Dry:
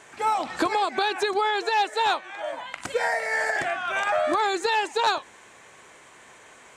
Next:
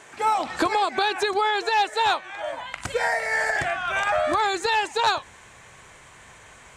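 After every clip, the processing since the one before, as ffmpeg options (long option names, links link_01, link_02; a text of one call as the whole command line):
ffmpeg -i in.wav -af "asubboost=boost=6.5:cutoff=120,volume=2dB" out.wav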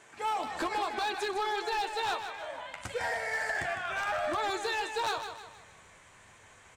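ffmpeg -i in.wav -af "flanger=delay=8.5:depth=3.6:regen=-38:speed=0.94:shape=triangular,asoftclip=type=hard:threshold=-22.5dB,aecho=1:1:155|310|465|620|775:0.376|0.158|0.0663|0.0278|0.0117,volume=-5dB" out.wav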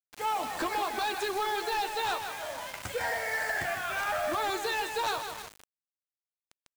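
ffmpeg -i in.wav -filter_complex "[0:a]asplit=2[link_01][link_02];[link_02]asoftclip=type=tanh:threshold=-40dB,volume=-8dB[link_03];[link_01][link_03]amix=inputs=2:normalize=0,acrusher=bits=6:mix=0:aa=0.000001" out.wav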